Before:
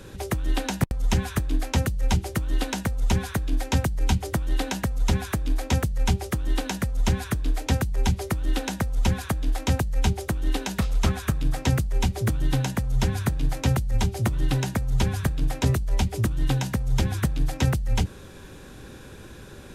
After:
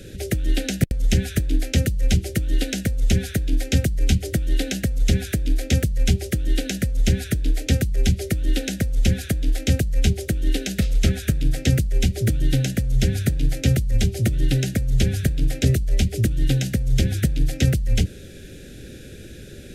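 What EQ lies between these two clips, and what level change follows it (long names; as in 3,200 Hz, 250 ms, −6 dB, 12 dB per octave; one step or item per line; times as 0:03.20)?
Butterworth band-reject 1,000 Hz, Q 0.86
+4.0 dB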